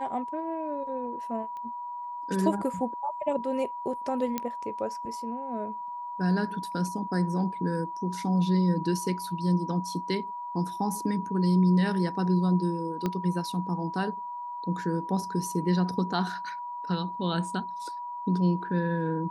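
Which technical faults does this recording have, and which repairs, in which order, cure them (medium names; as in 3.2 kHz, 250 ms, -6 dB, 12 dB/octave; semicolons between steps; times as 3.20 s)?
whine 970 Hz -34 dBFS
1.57 s: pop -30 dBFS
4.38 s: pop -14 dBFS
13.06 s: pop -16 dBFS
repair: de-click; band-stop 970 Hz, Q 30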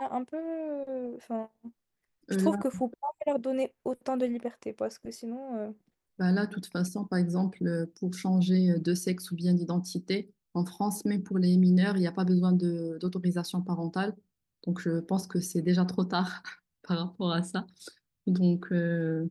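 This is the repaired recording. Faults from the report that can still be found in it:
1.57 s: pop
13.06 s: pop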